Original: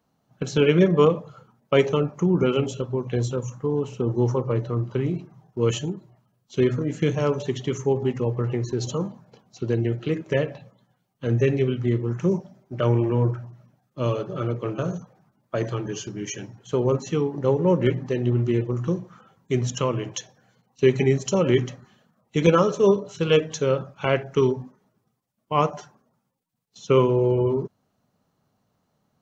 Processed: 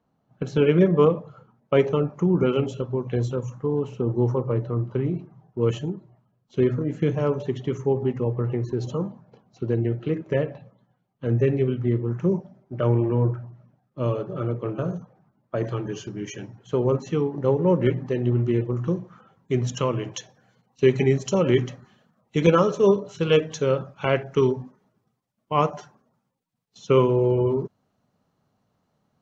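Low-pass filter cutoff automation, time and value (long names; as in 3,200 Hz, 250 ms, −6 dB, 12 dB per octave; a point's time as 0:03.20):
low-pass filter 6 dB per octave
1,600 Hz
from 0:02.10 2,400 Hz
from 0:04.00 1,400 Hz
from 0:15.64 2,600 Hz
from 0:19.67 5,300 Hz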